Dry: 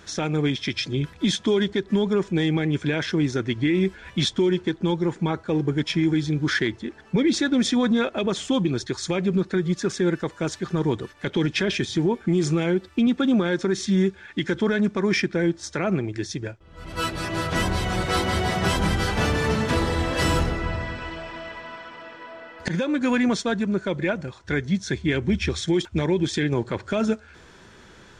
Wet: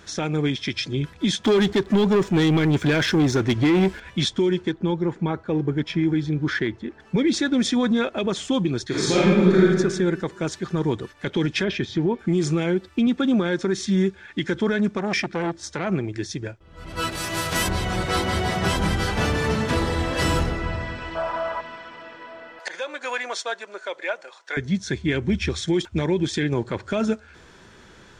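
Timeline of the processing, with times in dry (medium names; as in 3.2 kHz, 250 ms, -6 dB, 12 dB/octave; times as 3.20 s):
1.44–4.00 s: waveshaping leveller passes 2
4.72–7.00 s: low-pass 2.3 kHz 6 dB/octave
8.87–9.63 s: reverb throw, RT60 1.4 s, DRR -7.5 dB
11.64–12.19 s: distance through air 140 m
14.98–15.90 s: transformer saturation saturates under 780 Hz
17.11–17.67 s: formants flattened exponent 0.6
21.15–21.61 s: high-order bell 890 Hz +12 dB
22.59–24.57 s: high-pass 540 Hz 24 dB/octave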